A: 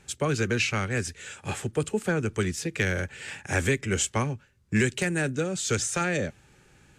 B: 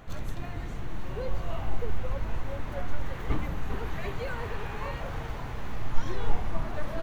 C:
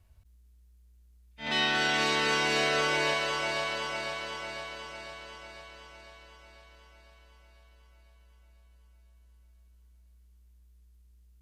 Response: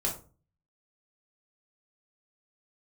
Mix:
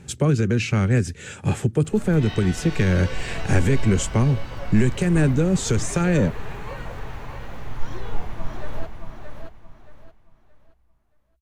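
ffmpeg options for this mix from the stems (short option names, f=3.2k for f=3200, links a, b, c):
-filter_complex "[0:a]equalizer=f=150:w=0.35:g=14,alimiter=limit=-13dB:level=0:latency=1:release=296,volume=2.5dB[a];[1:a]adelay=1850,volume=-1dB,asplit=2[b][c];[c]volume=-5dB[d];[2:a]flanger=delay=17.5:depth=6.6:speed=1.1,adelay=700,volume=-7.5dB[e];[d]aecho=0:1:624|1248|1872|2496:1|0.3|0.09|0.027[f];[a][b][e][f]amix=inputs=4:normalize=0"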